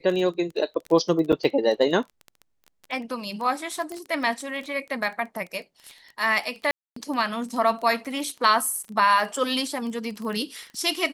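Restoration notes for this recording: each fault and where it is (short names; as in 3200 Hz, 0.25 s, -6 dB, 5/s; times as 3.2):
crackle 18/s -30 dBFS
1.32–1.33 gap 6.7 ms
3.92 pop -22 dBFS
6.71–6.96 gap 0.254 s
8.83–8.84 gap 5.2 ms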